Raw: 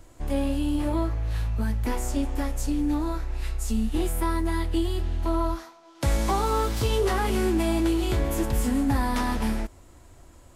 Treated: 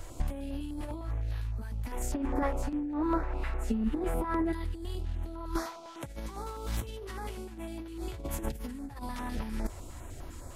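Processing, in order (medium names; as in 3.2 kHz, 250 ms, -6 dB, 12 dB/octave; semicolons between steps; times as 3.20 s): 2.14–4.53 s: three-band isolator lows -12 dB, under 190 Hz, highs -21 dB, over 2.1 kHz; compressor with a negative ratio -31 dBFS, ratio -0.5; step-sequenced notch 9.9 Hz 240–7900 Hz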